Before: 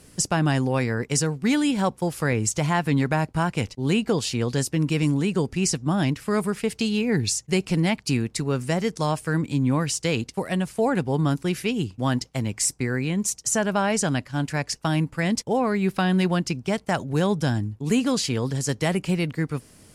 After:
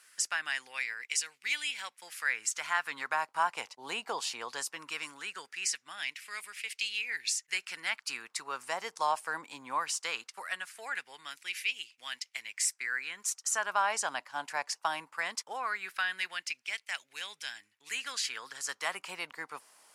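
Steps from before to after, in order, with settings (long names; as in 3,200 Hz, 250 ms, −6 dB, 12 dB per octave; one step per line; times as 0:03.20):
auto-filter high-pass sine 0.19 Hz 900–2,300 Hz
level −7 dB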